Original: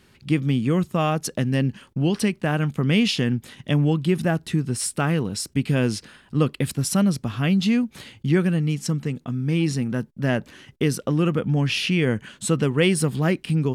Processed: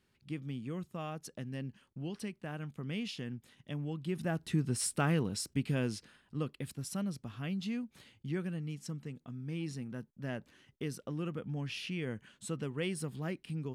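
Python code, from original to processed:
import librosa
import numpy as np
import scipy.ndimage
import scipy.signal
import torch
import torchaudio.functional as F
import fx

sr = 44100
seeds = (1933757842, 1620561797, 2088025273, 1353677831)

y = fx.gain(x, sr, db=fx.line((3.87, -19.0), (4.6, -8.0), (5.22, -8.0), (6.54, -17.0)))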